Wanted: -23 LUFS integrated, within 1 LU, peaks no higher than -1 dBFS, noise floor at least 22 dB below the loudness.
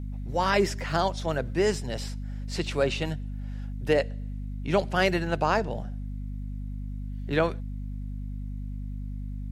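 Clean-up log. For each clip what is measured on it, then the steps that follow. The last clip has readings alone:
hum 50 Hz; highest harmonic 250 Hz; hum level -32 dBFS; loudness -29.5 LUFS; peak level -9.0 dBFS; loudness target -23.0 LUFS
-> de-hum 50 Hz, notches 5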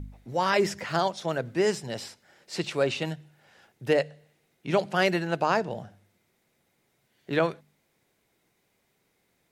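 hum not found; loudness -28.0 LUFS; peak level -9.5 dBFS; loudness target -23.0 LUFS
-> trim +5 dB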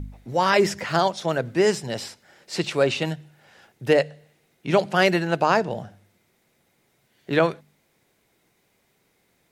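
loudness -23.0 LUFS; peak level -4.5 dBFS; noise floor -67 dBFS

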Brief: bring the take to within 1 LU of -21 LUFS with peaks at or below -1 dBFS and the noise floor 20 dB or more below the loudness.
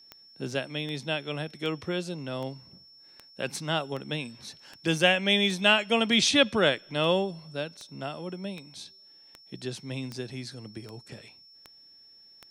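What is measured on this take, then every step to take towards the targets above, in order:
clicks found 17; steady tone 5.4 kHz; tone level -52 dBFS; loudness -27.5 LUFS; peak level -6.0 dBFS; loudness target -21.0 LUFS
-> de-click; band-stop 5.4 kHz, Q 30; trim +6.5 dB; peak limiter -1 dBFS

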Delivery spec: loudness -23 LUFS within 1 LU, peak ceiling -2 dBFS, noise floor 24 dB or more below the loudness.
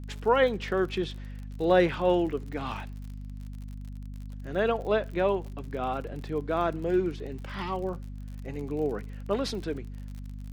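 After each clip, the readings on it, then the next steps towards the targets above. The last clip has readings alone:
tick rate 49 per s; hum 50 Hz; highest harmonic 250 Hz; hum level -36 dBFS; loudness -29.0 LUFS; peak level -9.5 dBFS; loudness target -23.0 LUFS
-> de-click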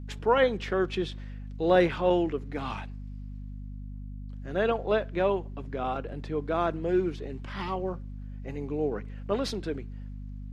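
tick rate 0 per s; hum 50 Hz; highest harmonic 250 Hz; hum level -37 dBFS
-> de-hum 50 Hz, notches 5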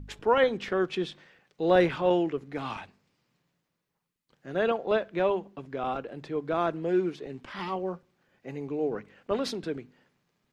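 hum not found; loudness -29.0 LUFS; peak level -9.5 dBFS; loudness target -23.0 LUFS
-> trim +6 dB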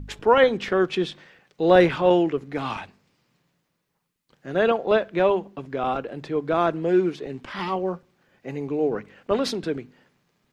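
loudness -23.5 LUFS; peak level -3.5 dBFS; noise floor -75 dBFS

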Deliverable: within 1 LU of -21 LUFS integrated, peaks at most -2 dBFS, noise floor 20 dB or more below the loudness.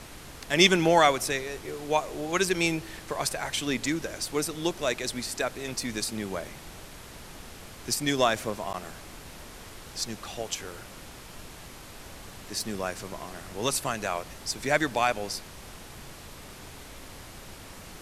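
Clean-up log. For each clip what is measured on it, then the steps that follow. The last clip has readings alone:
dropouts 1; longest dropout 9.5 ms; noise floor -46 dBFS; noise floor target -48 dBFS; loudness -28.0 LUFS; peak level -6.0 dBFS; loudness target -21.0 LUFS
-> interpolate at 8.73 s, 9.5 ms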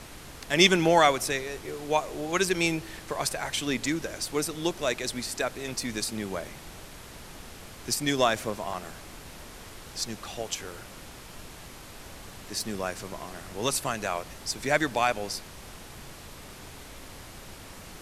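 dropouts 0; noise floor -46 dBFS; noise floor target -48 dBFS
-> noise print and reduce 6 dB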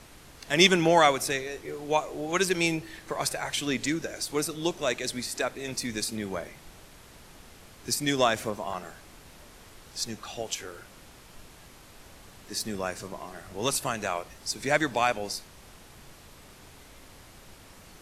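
noise floor -52 dBFS; loudness -28.0 LUFS; peak level -6.0 dBFS; loudness target -21.0 LUFS
-> trim +7 dB; peak limiter -2 dBFS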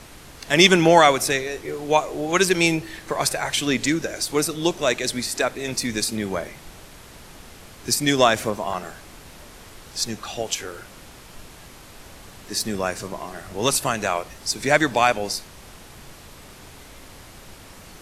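loudness -21.5 LUFS; peak level -2.0 dBFS; noise floor -45 dBFS

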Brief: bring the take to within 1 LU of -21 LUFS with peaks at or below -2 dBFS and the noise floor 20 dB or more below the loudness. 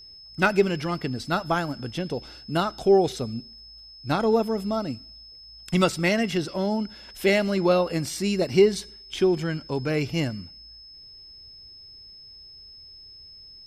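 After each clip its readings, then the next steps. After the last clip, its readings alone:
steady tone 5.2 kHz; tone level -44 dBFS; loudness -24.5 LUFS; peak level -6.5 dBFS; loudness target -21.0 LUFS
-> band-stop 5.2 kHz, Q 30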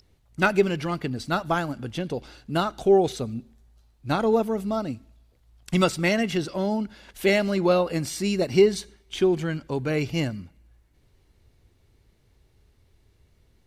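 steady tone not found; loudness -25.0 LUFS; peak level -6.5 dBFS; loudness target -21.0 LUFS
-> trim +4 dB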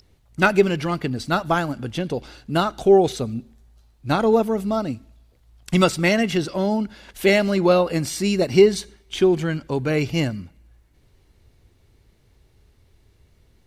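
loudness -21.0 LUFS; peak level -2.5 dBFS; noise floor -59 dBFS

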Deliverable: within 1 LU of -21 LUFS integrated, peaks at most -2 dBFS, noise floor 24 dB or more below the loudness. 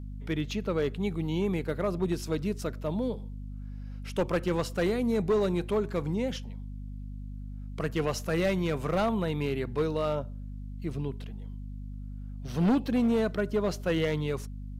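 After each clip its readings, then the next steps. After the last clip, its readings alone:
clipped samples 1.0%; clipping level -20.5 dBFS; hum 50 Hz; highest harmonic 250 Hz; hum level -37 dBFS; loudness -30.0 LUFS; peak level -20.5 dBFS; loudness target -21.0 LUFS
-> clip repair -20.5 dBFS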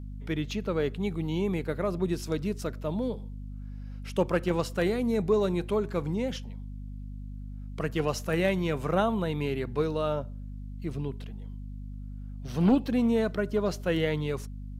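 clipped samples 0.0%; hum 50 Hz; highest harmonic 250 Hz; hum level -37 dBFS
-> de-hum 50 Hz, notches 5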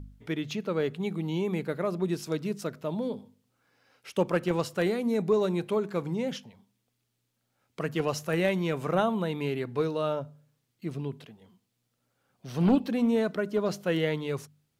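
hum not found; loudness -29.5 LUFS; peak level -12.0 dBFS; loudness target -21.0 LUFS
-> trim +8.5 dB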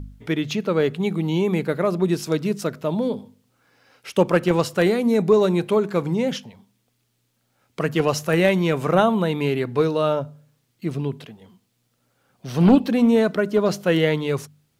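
loudness -21.0 LUFS; peak level -3.5 dBFS; noise floor -70 dBFS

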